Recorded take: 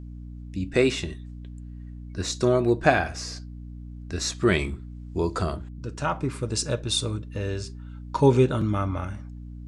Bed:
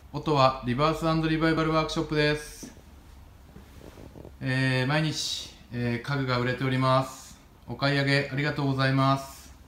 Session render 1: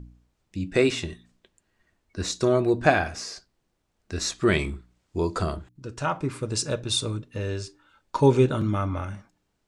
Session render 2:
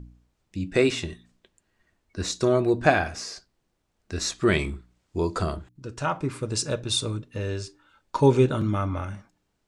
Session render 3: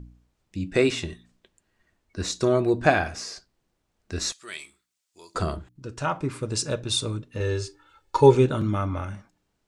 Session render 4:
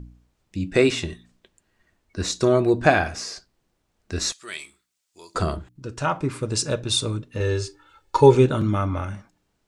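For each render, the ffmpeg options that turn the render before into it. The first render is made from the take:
-af "bandreject=f=60:t=h:w=4,bandreject=f=120:t=h:w=4,bandreject=f=180:t=h:w=4,bandreject=f=240:t=h:w=4,bandreject=f=300:t=h:w=4"
-af anull
-filter_complex "[0:a]asettb=1/sr,asplit=3[s0][s1][s2];[s0]atrim=end=4.324[s3];[s1]atrim=start=4.32:end=5.35,asetpts=PTS-STARTPTS,afade=t=in:d=0.004:c=qsin,afade=t=out:st=1.026:d=0.004:c=qsin,aderivative[s4];[s2]atrim=start=5.346[s5];[s3][s4]acrossfade=d=0.004:c1=hsin:c2=qsin[s6];[s6][s5]acrossfade=d=0.004:c1=qsin:c2=hsin,asettb=1/sr,asplit=3[s7][s8][s9];[s7]atrim=end=7.404[s10];[s8]atrim=start=7.4:end=8.35,asetpts=PTS-STARTPTS,afade=t=in:d=0.004:c=qsin,afade=t=out:st=0.946:d=0.004:c=qsin,aecho=1:1:2.3:0.9,atrim=end_sample=41895[s11];[s9]atrim=start=8.346[s12];[s10][s11]acrossfade=d=0.004:c1=hsin:c2=qsin[s13];[s13][s12]acrossfade=d=0.004:c1=qsin:c2=hsin"
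-af "volume=1.41,alimiter=limit=0.794:level=0:latency=1"

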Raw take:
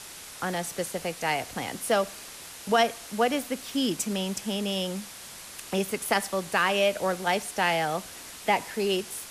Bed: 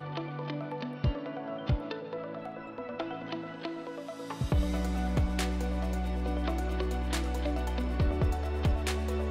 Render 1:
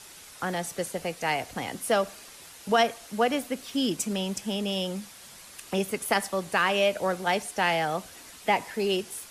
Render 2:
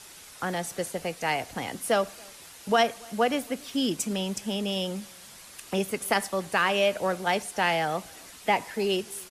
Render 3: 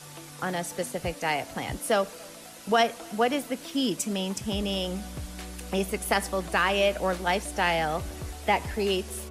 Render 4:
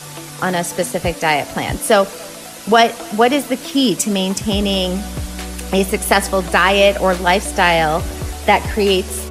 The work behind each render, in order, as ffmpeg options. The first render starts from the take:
-af "afftdn=nr=6:nf=-44"
-filter_complex "[0:a]asplit=2[s0][s1];[s1]adelay=279.9,volume=0.0447,highshelf=f=4000:g=-6.3[s2];[s0][s2]amix=inputs=2:normalize=0"
-filter_complex "[1:a]volume=0.335[s0];[0:a][s0]amix=inputs=2:normalize=0"
-af "volume=3.98,alimiter=limit=0.891:level=0:latency=1"

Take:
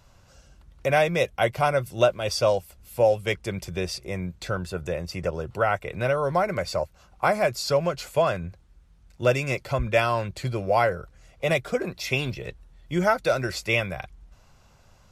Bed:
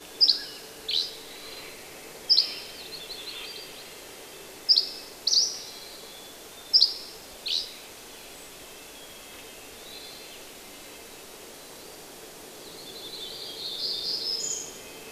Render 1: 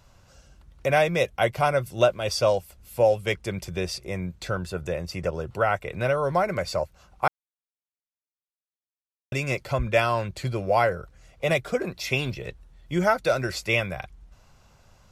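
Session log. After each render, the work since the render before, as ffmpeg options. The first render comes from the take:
-filter_complex "[0:a]asplit=3[s0][s1][s2];[s0]atrim=end=7.28,asetpts=PTS-STARTPTS,afade=t=out:st=7.276:d=0.004:c=hsin[s3];[s1]atrim=start=7.28:end=9.32,asetpts=PTS-STARTPTS,volume=0[s4];[s2]atrim=start=9.32,asetpts=PTS-STARTPTS,afade=t=in:d=0.004:c=hsin[s5];[s3][s4][s5]concat=n=3:v=0:a=1"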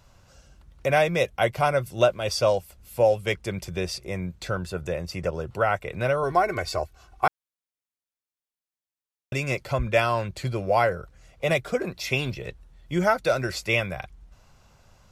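-filter_complex "[0:a]asettb=1/sr,asplit=3[s0][s1][s2];[s0]atrim=end=6.234[s3];[s1]atrim=start=6.23:end=7.27,asetpts=PTS-STARTPTS,afade=t=in:d=0.004:c=qsin,afade=t=out:st=1.036:d=0.004:c=qsin,aecho=1:1:2.7:0.65,atrim=end_sample=45864[s4];[s2]atrim=start=7.266[s5];[s3][s4]acrossfade=d=0.004:c1=hsin:c2=qsin[s6];[s6][s5]acrossfade=d=0.004:c1=qsin:c2=hsin"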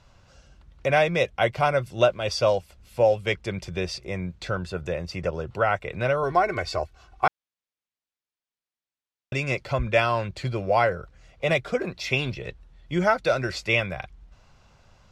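-af "lowpass=3800,aemphasis=mode=production:type=50kf"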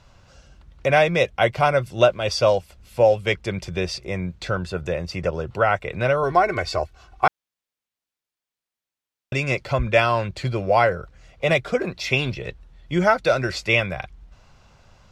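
-af "volume=1.5"

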